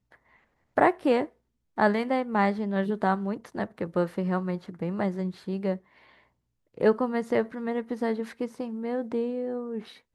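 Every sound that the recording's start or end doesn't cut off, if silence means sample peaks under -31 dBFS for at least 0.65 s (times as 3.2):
0.78–5.76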